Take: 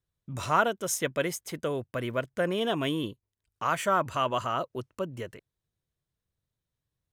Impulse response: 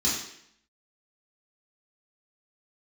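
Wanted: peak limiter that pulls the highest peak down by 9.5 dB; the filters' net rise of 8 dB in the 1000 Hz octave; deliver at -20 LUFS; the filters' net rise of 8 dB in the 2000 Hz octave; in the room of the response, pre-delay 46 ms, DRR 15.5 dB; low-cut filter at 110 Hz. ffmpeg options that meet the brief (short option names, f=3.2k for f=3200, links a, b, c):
-filter_complex "[0:a]highpass=110,equalizer=f=1k:t=o:g=7.5,equalizer=f=2k:t=o:g=8,alimiter=limit=-11.5dB:level=0:latency=1,asplit=2[a][b];[1:a]atrim=start_sample=2205,adelay=46[c];[b][c]afir=irnorm=-1:irlink=0,volume=-25.5dB[d];[a][d]amix=inputs=2:normalize=0,volume=6.5dB"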